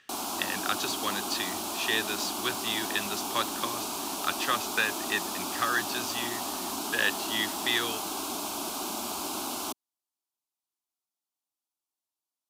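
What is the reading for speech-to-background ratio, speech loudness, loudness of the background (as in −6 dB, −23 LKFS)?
1.5 dB, −31.0 LKFS, −32.5 LKFS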